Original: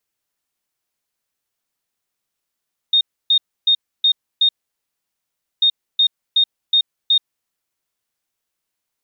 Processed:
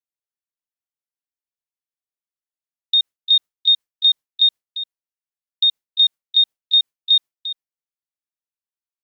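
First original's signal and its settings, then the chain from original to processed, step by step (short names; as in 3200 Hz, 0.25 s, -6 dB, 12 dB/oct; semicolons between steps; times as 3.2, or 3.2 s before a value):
beep pattern sine 3690 Hz, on 0.08 s, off 0.29 s, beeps 5, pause 1.13 s, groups 2, -10.5 dBFS
gate with hold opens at -13 dBFS; on a send: echo 0.348 s -11.5 dB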